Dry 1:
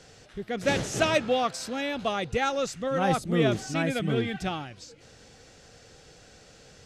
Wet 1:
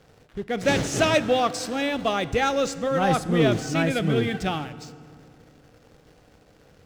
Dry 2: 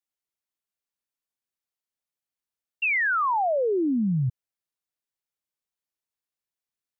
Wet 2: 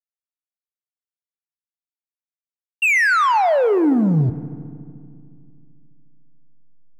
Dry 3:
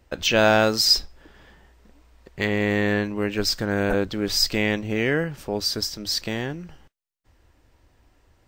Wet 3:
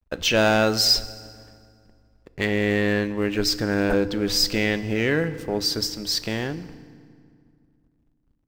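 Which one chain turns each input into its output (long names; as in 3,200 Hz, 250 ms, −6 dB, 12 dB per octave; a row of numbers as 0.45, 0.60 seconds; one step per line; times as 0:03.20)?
slack as between gear wheels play −47 dBFS
leveller curve on the samples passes 1
feedback delay network reverb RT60 2.2 s, low-frequency decay 1.35×, high-frequency decay 0.7×, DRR 14 dB
normalise the peak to −9 dBFS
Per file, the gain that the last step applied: +0.5, +7.0, −3.0 decibels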